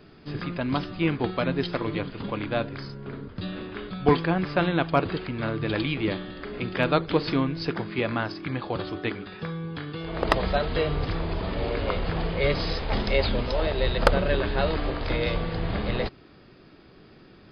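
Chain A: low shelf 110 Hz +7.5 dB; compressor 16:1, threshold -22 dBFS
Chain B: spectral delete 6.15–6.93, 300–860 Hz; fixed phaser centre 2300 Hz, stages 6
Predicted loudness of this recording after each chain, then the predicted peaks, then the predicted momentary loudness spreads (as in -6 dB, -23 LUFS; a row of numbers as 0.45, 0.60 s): -30.0, -30.5 LUFS; -10.5, -6.0 dBFS; 6, 10 LU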